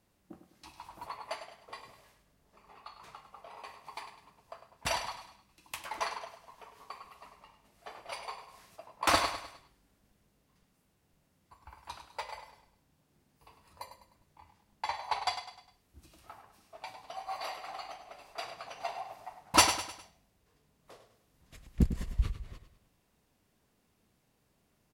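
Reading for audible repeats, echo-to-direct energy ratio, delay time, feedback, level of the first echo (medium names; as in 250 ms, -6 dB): 4, -9.5 dB, 102 ms, 42%, -10.5 dB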